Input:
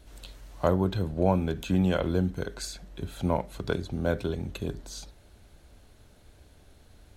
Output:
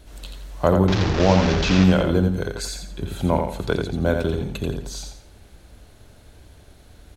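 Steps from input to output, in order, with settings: 0.88–1.84 delta modulation 32 kbps, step -23 dBFS; feedback echo 86 ms, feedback 32%, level -5.5 dB; gain +6 dB

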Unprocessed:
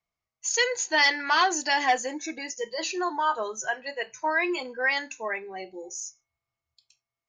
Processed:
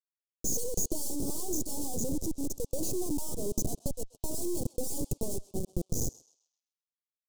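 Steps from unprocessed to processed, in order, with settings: Schmitt trigger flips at -33 dBFS; dynamic EQ 7700 Hz, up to +4 dB, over -46 dBFS, Q 0.83; half-wave rectifier; Chebyshev band-stop 390–7800 Hz, order 2; on a send: narrowing echo 0.13 s, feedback 55%, band-pass 2400 Hz, level -13 dB; on the sum: gain +4 dB

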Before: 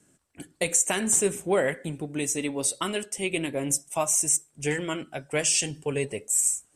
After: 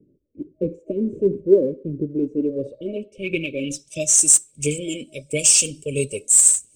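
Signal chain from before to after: FFT band-reject 630–2200 Hz; low-pass sweep 380 Hz -> 8400 Hz, 2.37–4.23; phaser 1.5 Hz, delay 4.4 ms, feedback 41%; gain +2.5 dB

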